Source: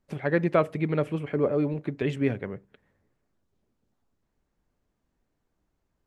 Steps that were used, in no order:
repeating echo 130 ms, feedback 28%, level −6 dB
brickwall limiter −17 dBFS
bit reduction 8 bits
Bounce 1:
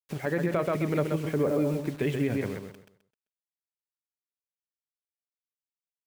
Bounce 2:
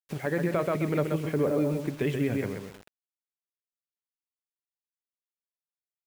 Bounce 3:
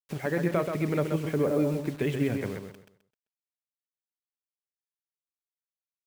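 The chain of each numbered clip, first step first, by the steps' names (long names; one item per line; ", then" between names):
bit reduction, then repeating echo, then brickwall limiter
repeating echo, then brickwall limiter, then bit reduction
brickwall limiter, then bit reduction, then repeating echo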